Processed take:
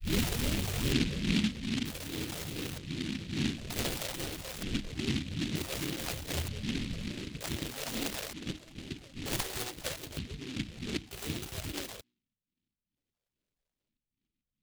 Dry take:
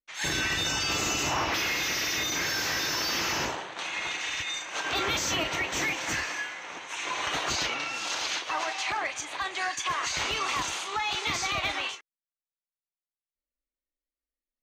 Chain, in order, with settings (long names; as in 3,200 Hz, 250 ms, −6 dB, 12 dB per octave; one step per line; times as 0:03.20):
turntable start at the beginning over 2.21 s
treble cut that deepens with the level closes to 340 Hz, closed at −26.5 dBFS
low-shelf EQ 130 Hz −6.5 dB
mains-hum notches 60/120/180/240/300/360 Hz
in parallel at −3 dB: brickwall limiter −32.5 dBFS, peak gain reduction 9 dB
on the sum: sample-rate reduction 1,600 Hz, jitter 0%
all-pass phaser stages 12, 2.4 Hz, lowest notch 260–2,000 Hz
auto-filter low-pass square 0.54 Hz 240–3,400 Hz
short delay modulated by noise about 2,900 Hz, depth 0.28 ms
level +3.5 dB